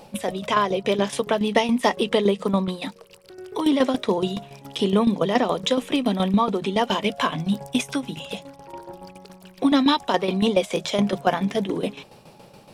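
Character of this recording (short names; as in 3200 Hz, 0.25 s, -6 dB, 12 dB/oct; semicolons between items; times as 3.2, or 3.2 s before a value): tremolo saw down 7.1 Hz, depth 70%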